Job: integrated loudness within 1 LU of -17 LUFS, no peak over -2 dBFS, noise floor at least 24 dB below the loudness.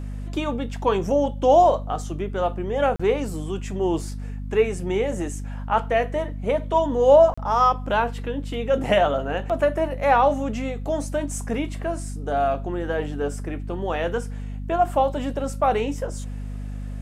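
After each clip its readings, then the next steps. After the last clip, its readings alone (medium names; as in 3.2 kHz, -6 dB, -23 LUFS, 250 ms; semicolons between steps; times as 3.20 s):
dropouts 2; longest dropout 35 ms; hum 50 Hz; highest harmonic 250 Hz; hum level -29 dBFS; loudness -23.0 LUFS; peak level -4.5 dBFS; loudness target -17.0 LUFS
-> interpolate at 2.96/7.34 s, 35 ms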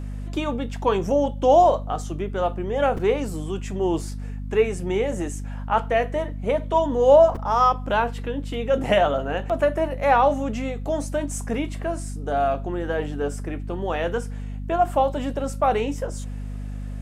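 dropouts 0; hum 50 Hz; highest harmonic 250 Hz; hum level -29 dBFS
-> hum notches 50/100/150/200/250 Hz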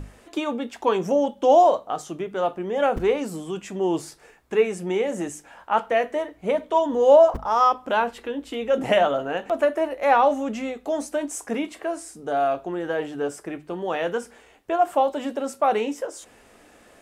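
hum not found; loudness -23.5 LUFS; peak level -5.0 dBFS; loudness target -17.0 LUFS
-> trim +6.5 dB; peak limiter -2 dBFS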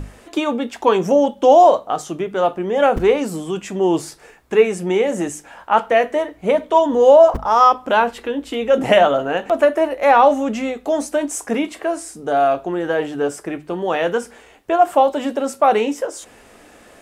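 loudness -17.0 LUFS; peak level -2.0 dBFS; noise floor -47 dBFS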